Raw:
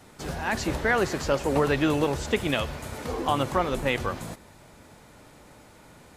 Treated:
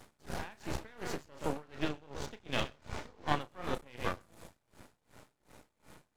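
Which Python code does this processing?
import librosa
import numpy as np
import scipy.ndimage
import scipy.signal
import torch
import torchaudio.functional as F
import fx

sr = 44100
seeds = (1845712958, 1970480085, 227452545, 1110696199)

p1 = fx.lowpass(x, sr, hz=6700.0, slope=24, at=(1.63, 3.41))
p2 = p1 + fx.echo_single(p1, sr, ms=127, db=-10.0, dry=0)
p3 = fx.rider(p2, sr, range_db=5, speed_s=0.5)
p4 = fx.doubler(p3, sr, ms=33.0, db=-8)
p5 = np.maximum(p4, 0.0)
p6 = p5 * 10.0 ** (-27 * (0.5 - 0.5 * np.cos(2.0 * np.pi * 2.7 * np.arange(len(p5)) / sr)) / 20.0)
y = p6 * librosa.db_to_amplitude(-3.5)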